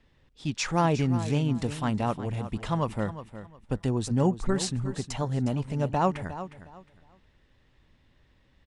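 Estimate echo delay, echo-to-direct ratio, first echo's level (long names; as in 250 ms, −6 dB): 360 ms, −12.0 dB, −12.5 dB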